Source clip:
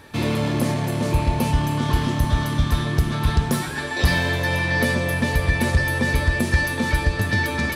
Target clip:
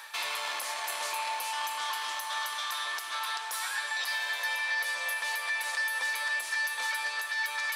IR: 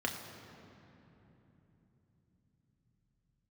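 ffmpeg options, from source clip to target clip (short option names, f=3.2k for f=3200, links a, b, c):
-af "highpass=f=920:w=0.5412,highpass=f=920:w=1.3066,equalizer=f=1.7k:t=o:w=2.4:g=-3,areverse,acompressor=mode=upward:threshold=-31dB:ratio=2.5,areverse,alimiter=level_in=1.5dB:limit=-24dB:level=0:latency=1:release=281,volume=-1.5dB,acontrast=56,volume=-3.5dB"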